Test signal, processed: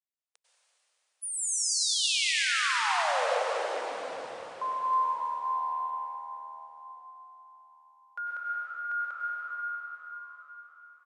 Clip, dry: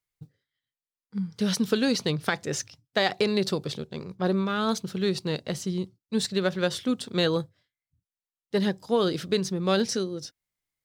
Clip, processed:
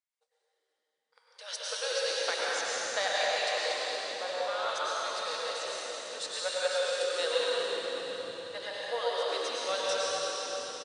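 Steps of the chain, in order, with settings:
linear-phase brick-wall band-pass 460–10,000 Hz
on a send: echo with shifted repeats 190 ms, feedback 55%, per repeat −77 Hz, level −15 dB
on the sum: dense smooth reverb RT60 4.6 s, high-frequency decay 1×, pre-delay 85 ms, DRR −7 dB
level −8 dB

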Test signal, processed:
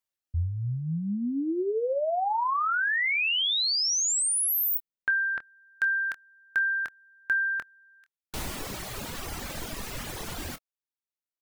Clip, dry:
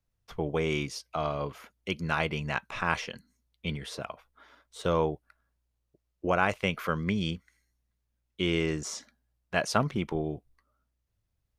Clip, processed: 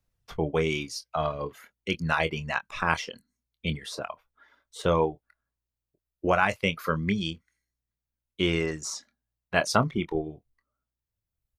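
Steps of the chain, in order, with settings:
reverb reduction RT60 2 s
double-tracking delay 25 ms −12 dB
level +3.5 dB

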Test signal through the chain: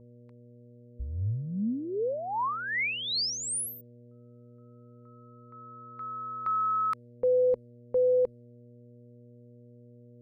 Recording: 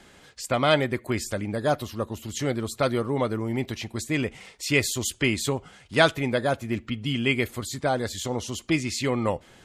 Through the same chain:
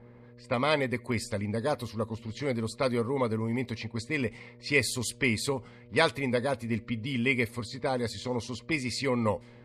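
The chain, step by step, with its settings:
hum with harmonics 120 Hz, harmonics 5, −50 dBFS −4 dB per octave
low-pass that shuts in the quiet parts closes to 1,100 Hz, open at −23.5 dBFS
EQ curve with evenly spaced ripples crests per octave 0.92, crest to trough 8 dB
level −4.5 dB

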